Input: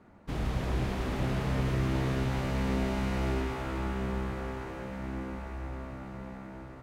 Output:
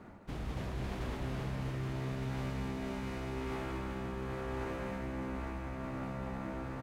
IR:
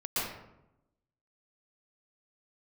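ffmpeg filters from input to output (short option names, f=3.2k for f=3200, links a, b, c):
-af "areverse,acompressor=threshold=-41dB:ratio=10,areverse,aecho=1:1:207:0.473,volume=5.5dB"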